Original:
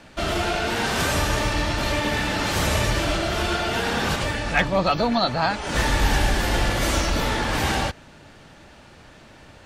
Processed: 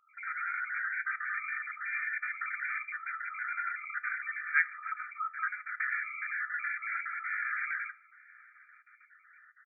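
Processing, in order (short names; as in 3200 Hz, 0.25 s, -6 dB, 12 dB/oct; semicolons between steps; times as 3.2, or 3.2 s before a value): random spectral dropouts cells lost 36%; brick-wall FIR band-pass 1200–2400 Hz; outdoor echo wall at 150 m, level -23 dB; on a send at -13 dB: reverb, pre-delay 3 ms; on the sum: gain -3.5 dB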